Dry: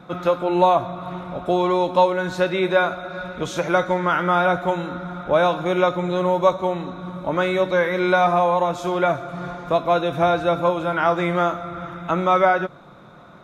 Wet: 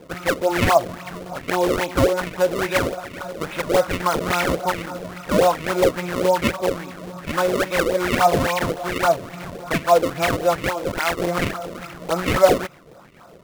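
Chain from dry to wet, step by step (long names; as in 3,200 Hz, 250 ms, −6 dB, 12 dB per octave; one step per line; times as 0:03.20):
0:10.60–0:11.20: parametric band 120 Hz −9 dB 2.6 octaves
sample-and-hold swept by an LFO 31×, swing 160% 3.6 Hz
auto-filter bell 2.4 Hz 450–2,500 Hz +12 dB
level −4.5 dB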